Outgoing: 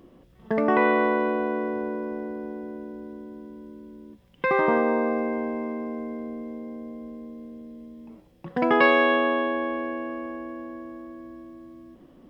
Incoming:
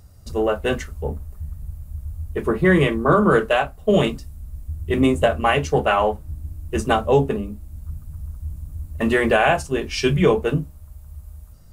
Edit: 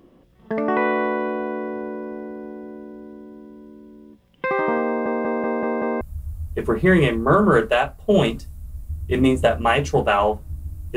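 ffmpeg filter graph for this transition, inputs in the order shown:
ffmpeg -i cue0.wav -i cue1.wav -filter_complex "[0:a]apad=whole_dur=10.96,atrim=end=10.96,asplit=6[link_01][link_02][link_03][link_04][link_05][link_06];[link_01]atrim=end=5.062[link_07];[link_02]atrim=start=4.868:end=5.062[link_08];[link_03]atrim=start=4.868:end=5.062[link_09];[link_04]atrim=start=4.868:end=5.062[link_10];[link_05]atrim=start=4.868:end=5.062[link_11];[link_06]atrim=start=4.868:end=5.062[link_12];[1:a]atrim=start=1.798:end=6.75[link_13];[link_07][link_08]acrossfade=duration=0.004:curve1=hsin:curve2=hsin[link_14];[link_14][link_09]acrossfade=duration=0.004:curve1=hsin:curve2=hsin[link_15];[link_15][link_10]acrossfade=duration=0.004:curve1=hsin:curve2=hsin[link_16];[link_16][link_11]acrossfade=duration=0.004:curve1=hsin:curve2=hsin[link_17];[link_17][link_12]acrossfade=duration=0.004:curve1=hsin:curve2=hsin[link_18];[link_18][link_13]acrossfade=duration=0.004:curve1=hsin:curve2=hsin" out.wav

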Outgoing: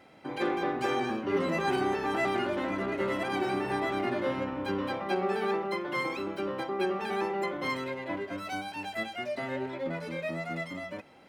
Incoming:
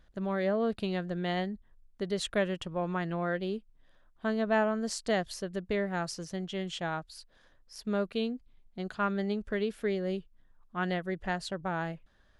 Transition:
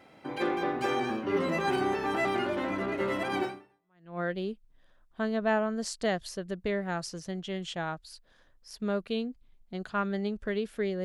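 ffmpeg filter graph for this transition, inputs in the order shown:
ffmpeg -i cue0.wav -i cue1.wav -filter_complex "[0:a]apad=whole_dur=11.04,atrim=end=11.04,atrim=end=4.2,asetpts=PTS-STARTPTS[link_01];[1:a]atrim=start=2.49:end=10.09,asetpts=PTS-STARTPTS[link_02];[link_01][link_02]acrossfade=duration=0.76:curve1=exp:curve2=exp" out.wav

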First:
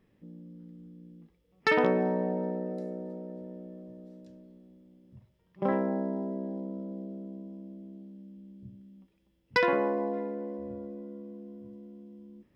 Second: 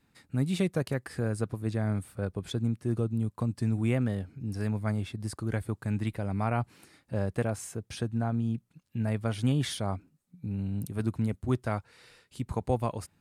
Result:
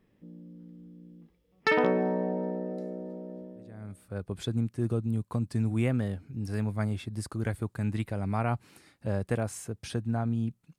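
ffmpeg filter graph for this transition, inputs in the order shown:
ffmpeg -i cue0.wav -i cue1.wav -filter_complex "[0:a]apad=whole_dur=10.78,atrim=end=10.78,atrim=end=4.35,asetpts=PTS-STARTPTS[link_01];[1:a]atrim=start=1.46:end=8.85,asetpts=PTS-STARTPTS[link_02];[link_01][link_02]acrossfade=duration=0.96:curve1=qua:curve2=qua" out.wav

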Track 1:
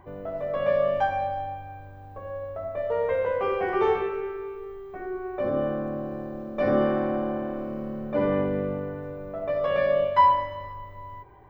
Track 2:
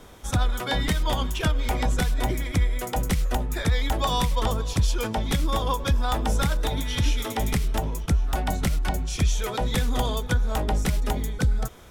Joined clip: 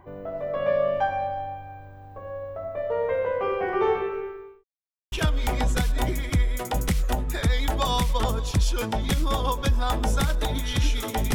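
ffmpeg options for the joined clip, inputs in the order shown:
ffmpeg -i cue0.wav -i cue1.wav -filter_complex "[0:a]apad=whole_dur=11.34,atrim=end=11.34,asplit=2[link_01][link_02];[link_01]atrim=end=4.64,asetpts=PTS-STARTPTS,afade=type=out:start_time=4.18:duration=0.46[link_03];[link_02]atrim=start=4.64:end=5.12,asetpts=PTS-STARTPTS,volume=0[link_04];[1:a]atrim=start=1.34:end=7.56,asetpts=PTS-STARTPTS,afade=type=in:duration=0.004:curve=hsin[link_05];[link_03][link_04][link_05]concat=n=3:v=0:a=1" out.wav

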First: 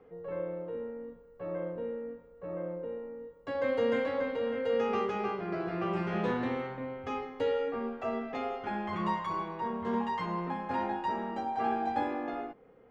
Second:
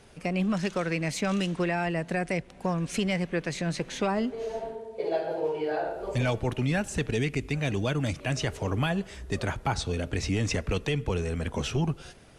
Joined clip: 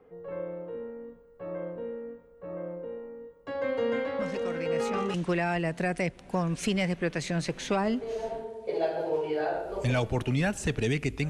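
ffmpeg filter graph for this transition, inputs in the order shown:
ffmpeg -i cue0.wav -i cue1.wav -filter_complex "[1:a]asplit=2[link_01][link_02];[0:a]apad=whole_dur=11.29,atrim=end=11.29,atrim=end=5.142[link_03];[link_02]atrim=start=1.448:end=7.6[link_04];[link_01]atrim=start=0.5:end=1.45,asetpts=PTS-STARTPTS,volume=-9.5dB,afade=type=in:duration=0.004:curve=hsin,afade=type=out:start_time=0.946:duration=0.004:curve=hsin,adelay=4190[link_05];[link_03][link_04]acrossfade=duration=0.004:curve1=hsin:curve2=hsin[link_06];[link_06][link_05]amix=inputs=2:normalize=0" out.wav

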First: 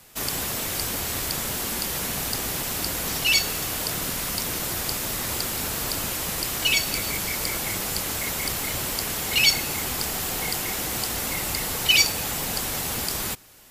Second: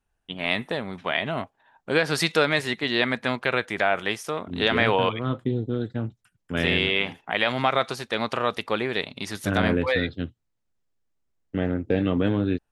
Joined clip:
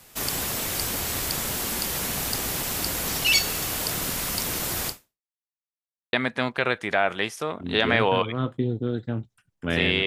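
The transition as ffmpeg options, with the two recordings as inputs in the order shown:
ffmpeg -i cue0.wav -i cue1.wav -filter_complex "[0:a]apad=whole_dur=10.06,atrim=end=10.06,asplit=2[link_01][link_02];[link_01]atrim=end=5.29,asetpts=PTS-STARTPTS,afade=type=out:start_time=4.88:duration=0.41:curve=exp[link_03];[link_02]atrim=start=5.29:end=6.13,asetpts=PTS-STARTPTS,volume=0[link_04];[1:a]atrim=start=3:end=6.93,asetpts=PTS-STARTPTS,afade=type=in:duration=0.004:curve=hsin[link_05];[link_03][link_04][link_05]concat=n=3:v=0:a=1" out.wav

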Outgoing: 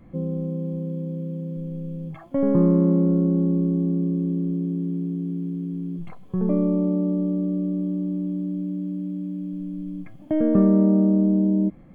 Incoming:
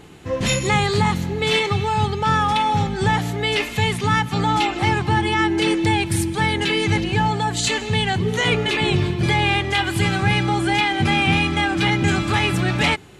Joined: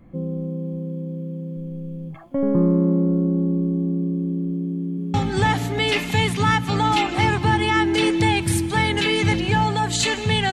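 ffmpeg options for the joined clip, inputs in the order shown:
ffmpeg -i cue0.wav -i cue1.wav -filter_complex "[0:a]apad=whole_dur=10.52,atrim=end=10.52,atrim=end=5.142[link_01];[1:a]atrim=start=2.778:end=8.16[link_02];[link_01][link_02]acrossfade=duration=0.004:curve1=hsin:curve2=hsin,asplit=2[link_03][link_04];[link_04]afade=type=in:start_time=4.66:duration=0.01,afade=type=out:start_time=5.14:duration=0.01,aecho=0:1:320|640|960|1280|1600|1920|2240|2560|2880|3200|3520|3840:0.707946|0.601754|0.511491|0.434767|0.369552|0.314119|0.267001|0.226951|0.192909|0.163972|0.139376|0.11847[link_05];[link_03][link_05]amix=inputs=2:normalize=0" out.wav

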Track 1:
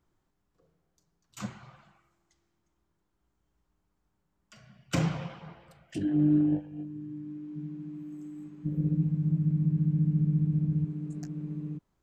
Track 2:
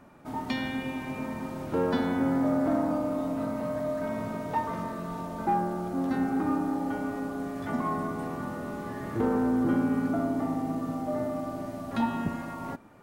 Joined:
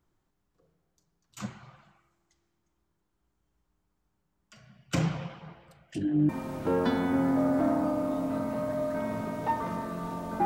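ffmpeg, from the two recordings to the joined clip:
ffmpeg -i cue0.wav -i cue1.wav -filter_complex "[0:a]apad=whole_dur=10.45,atrim=end=10.45,atrim=end=6.292[link_01];[1:a]atrim=start=1.358:end=5.52[link_02];[link_01][link_02]acrossfade=duration=0.004:curve1=hsin:curve2=hsin" out.wav

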